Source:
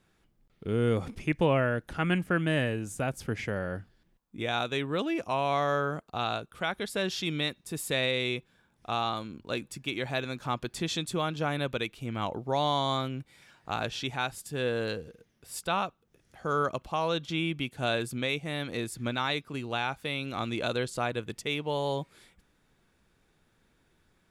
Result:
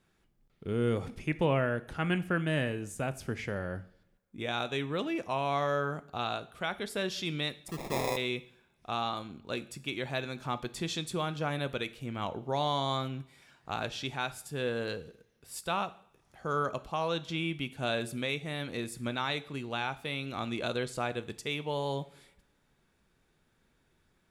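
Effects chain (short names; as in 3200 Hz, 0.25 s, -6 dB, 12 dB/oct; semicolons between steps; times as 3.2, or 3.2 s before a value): 7.68–8.17 sample-rate reducer 1500 Hz, jitter 0%; two-slope reverb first 0.55 s, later 1.9 s, from -25 dB, DRR 12.5 dB; gain -3 dB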